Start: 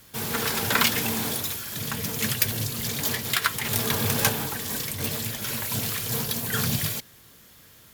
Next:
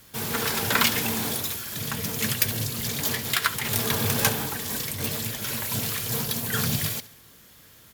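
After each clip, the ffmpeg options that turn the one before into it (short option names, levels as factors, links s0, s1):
-af "aecho=1:1:69|138|207|276:0.126|0.0592|0.0278|0.0131"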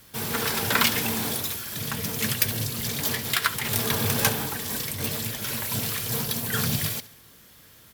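-af "bandreject=f=6800:w=22"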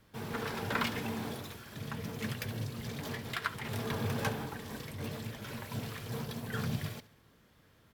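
-af "lowpass=f=1400:p=1,volume=0.473"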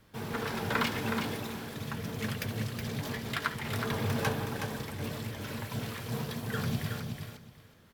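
-af "aecho=1:1:369|738|1107:0.501|0.0902|0.0162,volume=1.33"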